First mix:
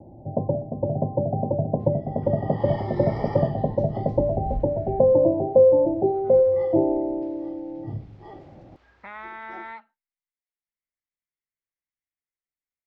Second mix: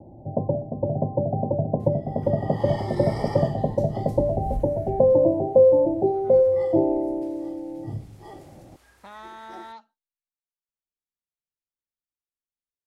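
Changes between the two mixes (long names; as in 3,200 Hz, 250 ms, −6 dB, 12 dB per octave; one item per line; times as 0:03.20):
speech: remove low-pass with resonance 2,100 Hz, resonance Q 7.5
second sound: remove Gaussian smoothing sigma 2.1 samples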